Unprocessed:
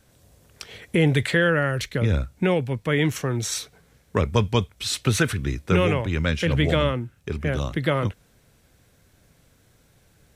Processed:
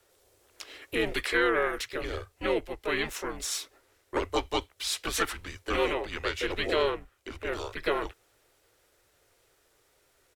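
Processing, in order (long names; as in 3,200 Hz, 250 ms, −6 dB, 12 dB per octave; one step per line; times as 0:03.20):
pitch-shifted copies added −7 semitones −15 dB, +4 semitones −3 dB
frequency shifter −160 Hz
low shelf with overshoot 290 Hz −13 dB, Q 1.5
level −6 dB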